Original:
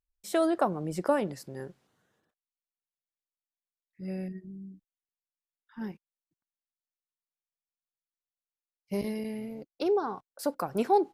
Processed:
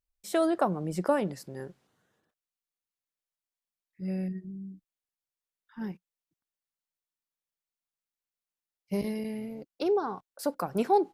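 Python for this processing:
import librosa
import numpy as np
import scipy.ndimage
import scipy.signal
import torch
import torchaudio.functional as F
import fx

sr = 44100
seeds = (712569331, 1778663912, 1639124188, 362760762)

y = fx.dynamic_eq(x, sr, hz=180.0, q=6.0, threshold_db=-50.0, ratio=4.0, max_db=5)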